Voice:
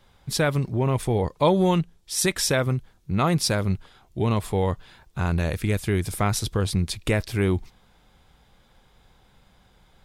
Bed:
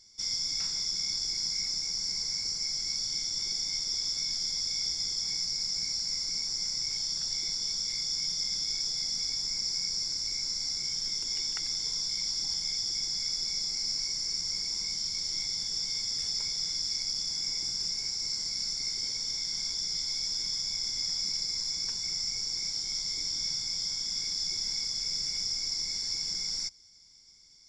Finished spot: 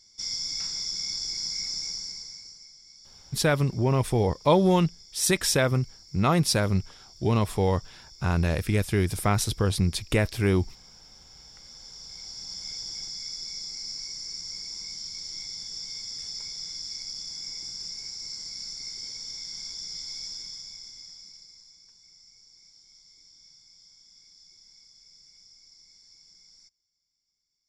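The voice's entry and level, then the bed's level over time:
3.05 s, -0.5 dB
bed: 1.88 s 0 dB
2.77 s -19.5 dB
11.32 s -19.5 dB
12.69 s -4.5 dB
20.26 s -4.5 dB
21.83 s -22.5 dB

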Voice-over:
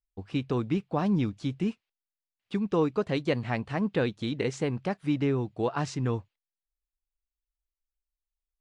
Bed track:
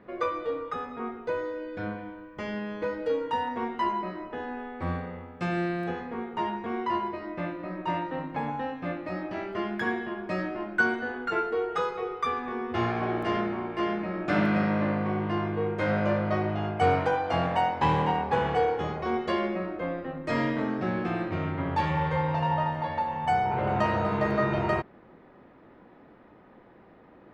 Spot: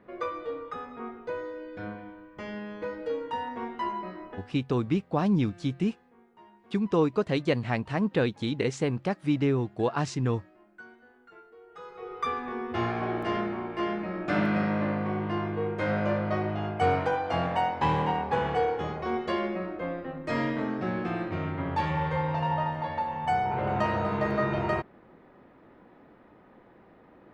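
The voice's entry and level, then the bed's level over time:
4.20 s, +1.5 dB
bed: 4.33 s -4 dB
4.56 s -24.5 dB
11.6 s -24.5 dB
12.22 s -1.5 dB

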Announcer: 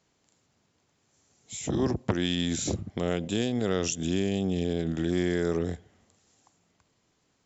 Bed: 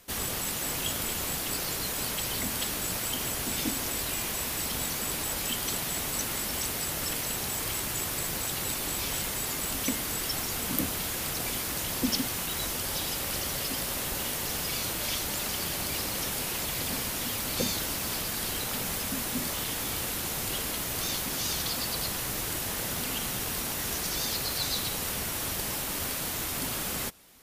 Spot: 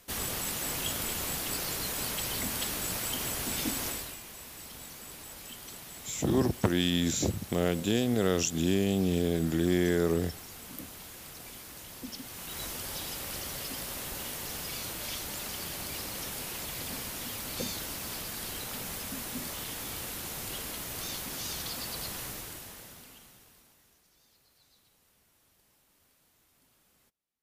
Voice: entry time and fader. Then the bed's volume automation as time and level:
4.55 s, +0.5 dB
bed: 3.88 s -2 dB
4.21 s -14 dB
12.18 s -14 dB
12.61 s -6 dB
22.24 s -6 dB
24.04 s -35.5 dB

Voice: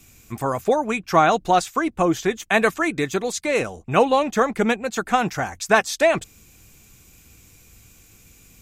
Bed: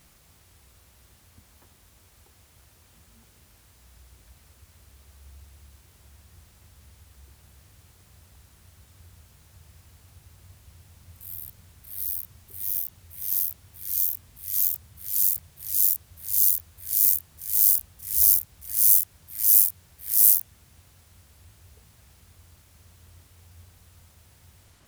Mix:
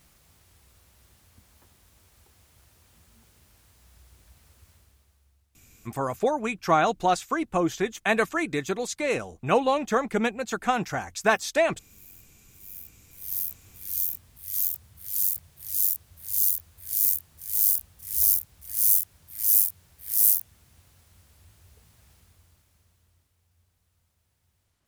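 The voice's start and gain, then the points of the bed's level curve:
5.55 s, -5.0 dB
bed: 4.7 s -2.5 dB
5.49 s -21 dB
12.35 s -21 dB
13.48 s -3 dB
22.13 s -3 dB
23.4 s -17.5 dB

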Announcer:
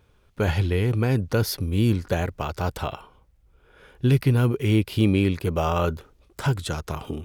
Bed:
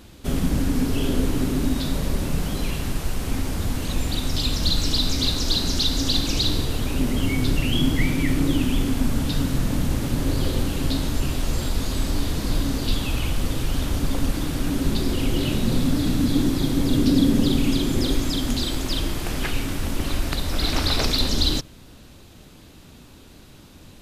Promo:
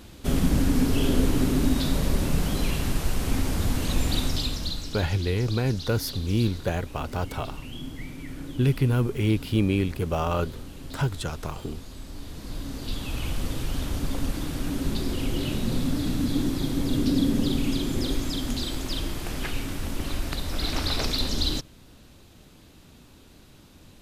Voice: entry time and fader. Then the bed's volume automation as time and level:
4.55 s, -3.0 dB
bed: 4.21 s 0 dB
5.06 s -16.5 dB
12.07 s -16.5 dB
13.3 s -5 dB

